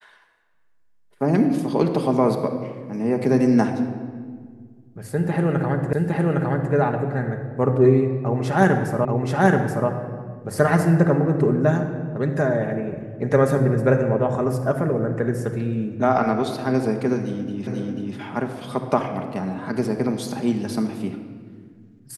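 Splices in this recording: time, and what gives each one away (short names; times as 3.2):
5.93 repeat of the last 0.81 s
9.05 repeat of the last 0.83 s
17.67 repeat of the last 0.49 s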